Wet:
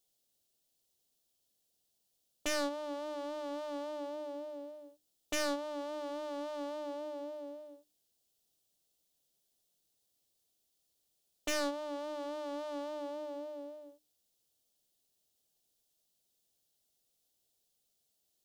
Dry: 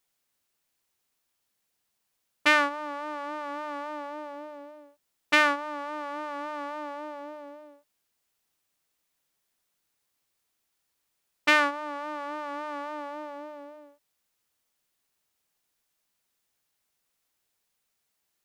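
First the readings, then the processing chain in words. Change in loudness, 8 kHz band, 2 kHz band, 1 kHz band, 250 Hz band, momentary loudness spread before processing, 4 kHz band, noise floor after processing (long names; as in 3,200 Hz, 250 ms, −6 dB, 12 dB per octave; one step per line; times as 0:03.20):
−11.0 dB, +0.5 dB, −18.0 dB, −13.5 dB, −4.5 dB, 21 LU, −9.5 dB, −79 dBFS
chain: soft clipping −17 dBFS, distortion −7 dB
flat-topped bell 1,500 Hz −13.5 dB
mains-hum notches 50/100/150/200/250/300 Hz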